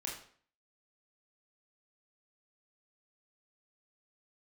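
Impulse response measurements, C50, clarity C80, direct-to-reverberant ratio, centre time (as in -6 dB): 5.0 dB, 9.0 dB, -3.0 dB, 36 ms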